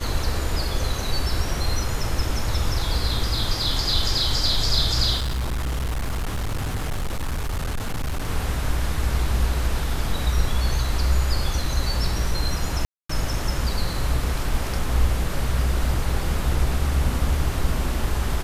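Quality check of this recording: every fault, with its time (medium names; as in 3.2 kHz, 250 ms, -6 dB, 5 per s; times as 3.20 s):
5.17–8.29 s: clipped -22 dBFS
12.85–13.09 s: dropout 244 ms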